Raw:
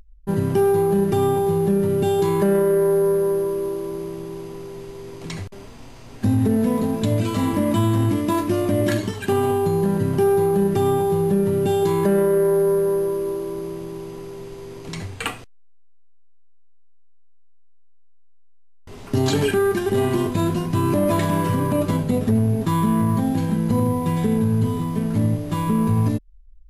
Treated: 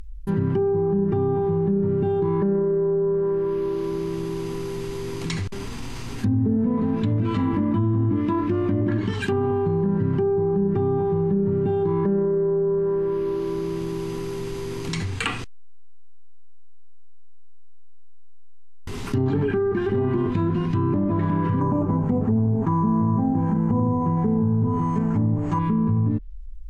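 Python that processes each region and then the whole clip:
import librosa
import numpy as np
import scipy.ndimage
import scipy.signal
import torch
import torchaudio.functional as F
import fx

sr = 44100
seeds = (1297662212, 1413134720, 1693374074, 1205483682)

y = fx.chain(x, sr, fx.lowpass(hz=3500.0, slope=12),
    fx.peak_eq(hz=820.0, db=10.5, octaves=1.2),
    fx.resample_bad(factor=6, down='filtered', up='hold'), at=(21.61, 25.59))
y = fx.env_lowpass_down(y, sr, base_hz=770.0, full_db=-14.5)
y = fx.peak_eq(y, sr, hz=610.0, db=-12.5, octaves=0.64)
y = fx.env_flatten(y, sr, amount_pct=50)
y = y * 10.0 ** (-3.0 / 20.0)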